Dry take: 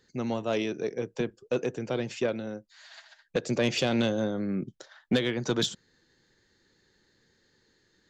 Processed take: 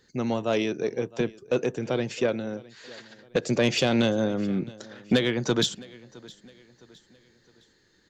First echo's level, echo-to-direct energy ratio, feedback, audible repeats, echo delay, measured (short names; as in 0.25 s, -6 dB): -22.0 dB, -21.0 dB, 42%, 2, 0.662 s